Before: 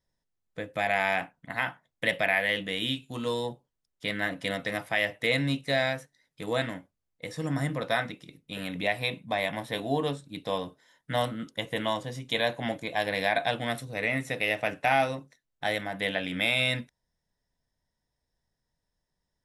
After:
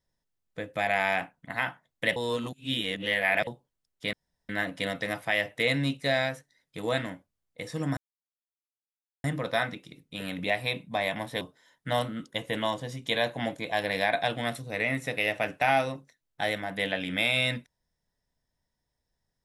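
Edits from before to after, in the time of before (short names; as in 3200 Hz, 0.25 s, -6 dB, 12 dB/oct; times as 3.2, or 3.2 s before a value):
2.16–3.47 reverse
4.13 insert room tone 0.36 s
7.61 insert silence 1.27 s
9.78–10.64 cut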